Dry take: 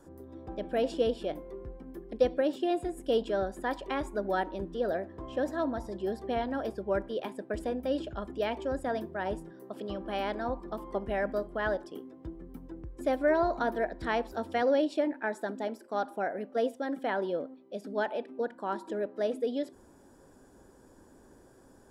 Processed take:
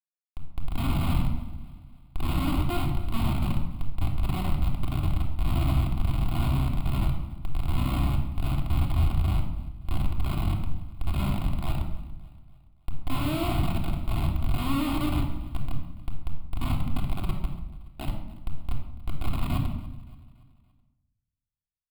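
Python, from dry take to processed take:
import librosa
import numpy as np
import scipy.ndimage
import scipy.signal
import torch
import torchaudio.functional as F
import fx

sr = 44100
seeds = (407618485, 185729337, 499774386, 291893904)

p1 = fx.spec_blur(x, sr, span_ms=194.0)
p2 = fx.dereverb_blind(p1, sr, rt60_s=0.57)
p3 = scipy.signal.sosfilt(scipy.signal.butter(4, 86.0, 'highpass', fs=sr, output='sos'), p2)
p4 = fx.riaa(p3, sr, side='playback')
p5 = fx.notch(p4, sr, hz=1000.0, q=29.0)
p6 = fx.transient(p5, sr, attack_db=-8, sustain_db=8)
p7 = (np.mod(10.0 ** (34.5 / 20.0) * p6 + 1.0, 2.0) - 1.0) / 10.0 ** (34.5 / 20.0)
p8 = p6 + (p7 * librosa.db_to_amplitude(-5.0))
p9 = fx.low_shelf(p8, sr, hz=230.0, db=8.0)
p10 = fx.schmitt(p9, sr, flips_db=-26.0)
p11 = fx.fixed_phaser(p10, sr, hz=1700.0, stages=6)
p12 = p11 + fx.echo_feedback(p11, sr, ms=285, feedback_pct=47, wet_db=-20, dry=0)
p13 = fx.room_shoebox(p12, sr, seeds[0], volume_m3=2600.0, walls='furnished', distance_m=3.3)
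y = p13 * librosa.db_to_amplitude(4.0)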